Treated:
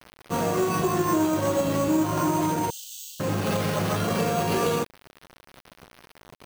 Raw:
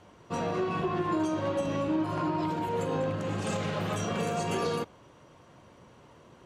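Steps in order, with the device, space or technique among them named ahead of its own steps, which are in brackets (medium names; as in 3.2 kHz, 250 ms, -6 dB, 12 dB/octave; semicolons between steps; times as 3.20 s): early 8-bit sampler (sample-rate reducer 7.2 kHz, jitter 0%; bit crusher 8-bit); 2.70–3.20 s: steep high-pass 2.9 kHz 96 dB/octave; trim +6 dB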